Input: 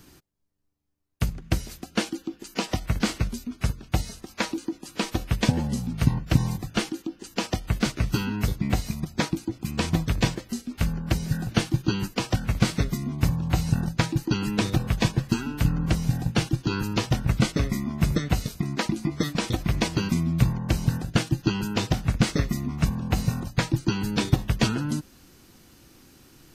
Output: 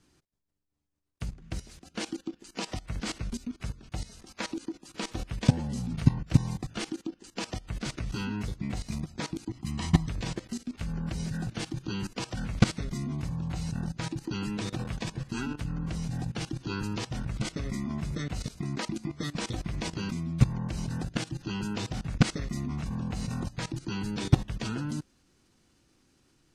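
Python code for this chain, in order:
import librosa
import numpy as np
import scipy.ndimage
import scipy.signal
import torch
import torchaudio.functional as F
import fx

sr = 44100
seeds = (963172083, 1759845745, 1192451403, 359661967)

y = scipy.signal.sosfilt(scipy.signal.butter(4, 10000.0, 'lowpass', fs=sr, output='sos'), x)
y = fx.comb(y, sr, ms=1.0, depth=0.64, at=(9.48, 10.09))
y = fx.highpass(y, sr, hz=fx.line((14.67, 200.0), (15.08, 47.0)), slope=6, at=(14.67, 15.08), fade=0.02)
y = fx.level_steps(y, sr, step_db=17)
y = F.gain(torch.from_numpy(y), 1.5).numpy()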